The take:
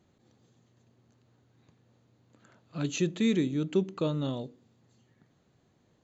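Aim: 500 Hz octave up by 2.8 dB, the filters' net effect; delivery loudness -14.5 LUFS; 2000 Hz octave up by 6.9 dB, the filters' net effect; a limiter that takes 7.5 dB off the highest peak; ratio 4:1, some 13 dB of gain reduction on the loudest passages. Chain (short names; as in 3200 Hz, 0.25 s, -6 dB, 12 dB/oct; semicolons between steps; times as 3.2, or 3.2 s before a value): bell 500 Hz +3.5 dB; bell 2000 Hz +8.5 dB; compressor 4:1, threshold -36 dBFS; gain +28 dB; limiter -4 dBFS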